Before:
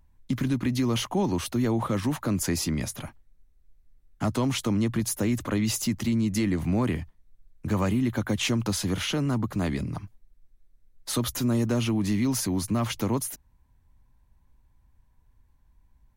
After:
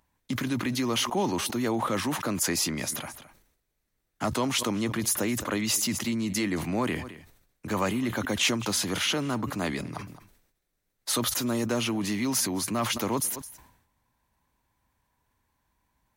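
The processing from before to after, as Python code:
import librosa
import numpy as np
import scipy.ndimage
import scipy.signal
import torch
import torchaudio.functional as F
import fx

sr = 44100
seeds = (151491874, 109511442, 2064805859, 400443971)

y = fx.highpass(x, sr, hz=510.0, slope=6)
y = y + 10.0 ** (-23.0 / 20.0) * np.pad(y, (int(216 * sr / 1000.0), 0))[:len(y)]
y = fx.sustainer(y, sr, db_per_s=73.0)
y = y * 10.0 ** (3.5 / 20.0)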